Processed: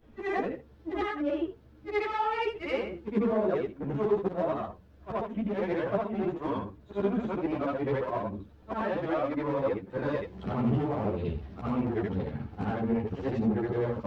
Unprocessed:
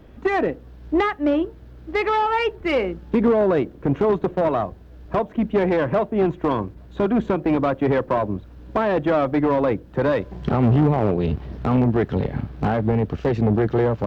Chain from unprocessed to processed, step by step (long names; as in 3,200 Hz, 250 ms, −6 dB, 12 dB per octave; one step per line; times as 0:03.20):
every overlapping window played backwards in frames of 183 ms
string-ensemble chorus
level −3.5 dB